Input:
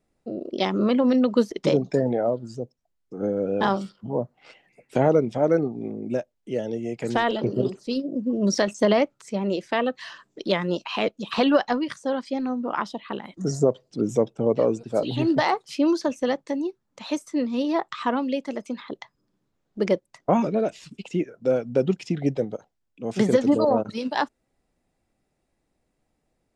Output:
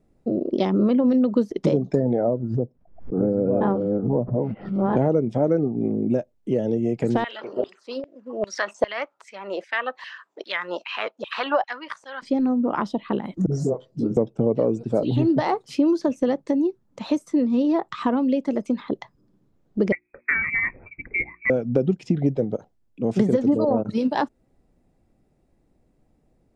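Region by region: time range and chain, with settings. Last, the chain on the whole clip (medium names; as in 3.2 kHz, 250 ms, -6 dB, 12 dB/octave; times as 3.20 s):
2.24–4.97 s: chunks repeated in reverse 682 ms, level -3.5 dB + low-pass 1.6 kHz + swell ahead of each attack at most 110 dB/s
7.24–12.22 s: LFO high-pass saw down 2.5 Hz 660–2500 Hz + treble shelf 4.6 kHz -11 dB
13.46–14.17 s: compression 2:1, threshold -24 dBFS + phase dispersion highs, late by 57 ms, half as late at 320 Hz + detune thickener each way 20 cents
19.92–21.50 s: frequency inversion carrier 2.5 kHz + hum notches 60/120/180/240/300/360 Hz
whole clip: tilt shelf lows +7 dB, about 770 Hz; compression 3:1, threshold -24 dBFS; trim +5 dB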